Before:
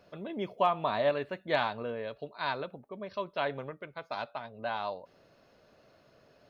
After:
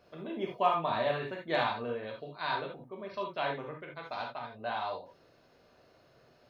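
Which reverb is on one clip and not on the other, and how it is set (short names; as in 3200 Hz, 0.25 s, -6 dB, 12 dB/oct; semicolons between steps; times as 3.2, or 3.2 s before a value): non-linear reverb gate 0.1 s flat, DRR -0.5 dB; gain -3.5 dB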